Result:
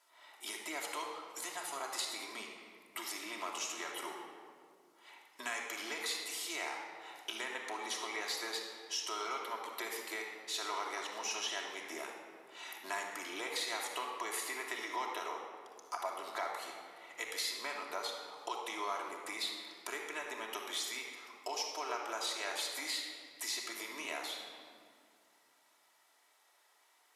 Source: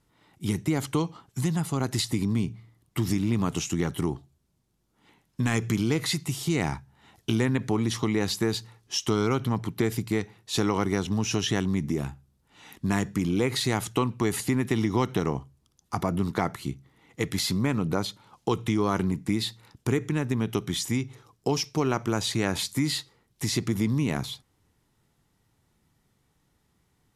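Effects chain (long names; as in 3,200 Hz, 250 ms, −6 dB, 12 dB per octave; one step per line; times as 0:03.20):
high-pass filter 590 Hz 24 dB per octave
downward compressor 2 to 1, threshold −51 dBFS, peak gain reduction 15 dB
rectangular room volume 3,900 cubic metres, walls mixed, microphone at 2.9 metres
level +2.5 dB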